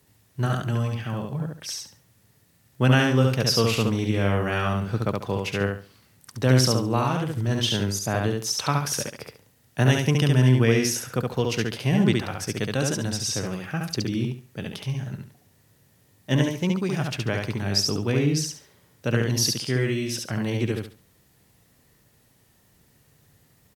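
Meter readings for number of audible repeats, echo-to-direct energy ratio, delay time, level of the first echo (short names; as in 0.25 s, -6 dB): 3, -2.5 dB, 70 ms, -3.0 dB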